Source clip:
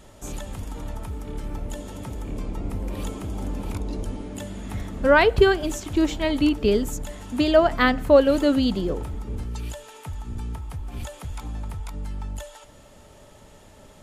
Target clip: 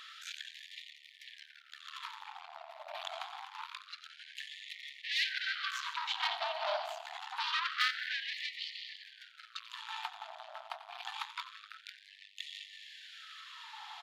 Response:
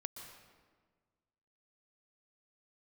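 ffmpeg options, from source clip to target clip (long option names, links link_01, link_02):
-filter_complex "[0:a]bass=frequency=250:gain=2,treble=frequency=4000:gain=-8,asplit=2[link_01][link_02];[1:a]atrim=start_sample=2205,lowpass=8000,lowshelf=frequency=370:gain=10[link_03];[link_02][link_03]afir=irnorm=-1:irlink=0,volume=4.5dB[link_04];[link_01][link_04]amix=inputs=2:normalize=0,acompressor=threshold=-15dB:ratio=10,asoftclip=type=tanh:threshold=-24dB,equalizer=frequency=500:width_type=o:width=1:gain=4,equalizer=frequency=4000:width_type=o:width=1:gain=12,equalizer=frequency=8000:width_type=o:width=1:gain=-8,aecho=1:1:90|180|270|360|450:0.158|0.0856|0.0462|0.025|0.0135,afftfilt=real='re*gte(b*sr/1024,600*pow(1800/600,0.5+0.5*sin(2*PI*0.26*pts/sr)))':imag='im*gte(b*sr/1024,600*pow(1800/600,0.5+0.5*sin(2*PI*0.26*pts/sr)))':win_size=1024:overlap=0.75"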